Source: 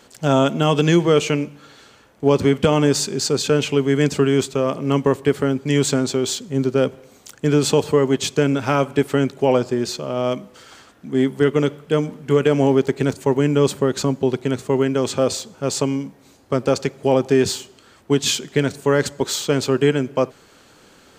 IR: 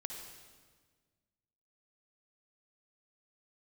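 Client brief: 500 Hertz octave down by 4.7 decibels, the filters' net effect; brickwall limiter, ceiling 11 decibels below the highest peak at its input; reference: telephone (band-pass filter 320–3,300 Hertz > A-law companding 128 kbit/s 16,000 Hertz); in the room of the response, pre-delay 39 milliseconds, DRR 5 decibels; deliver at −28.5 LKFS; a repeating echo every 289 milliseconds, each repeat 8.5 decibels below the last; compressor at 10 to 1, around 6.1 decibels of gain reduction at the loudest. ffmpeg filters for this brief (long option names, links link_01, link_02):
-filter_complex "[0:a]equalizer=frequency=500:width_type=o:gain=-4.5,acompressor=threshold=-18dB:ratio=10,alimiter=limit=-18.5dB:level=0:latency=1,aecho=1:1:289|578|867|1156:0.376|0.143|0.0543|0.0206,asplit=2[link_01][link_02];[1:a]atrim=start_sample=2205,adelay=39[link_03];[link_02][link_03]afir=irnorm=-1:irlink=0,volume=-3.5dB[link_04];[link_01][link_04]amix=inputs=2:normalize=0,highpass=320,lowpass=3300,volume=3dB" -ar 16000 -c:a pcm_alaw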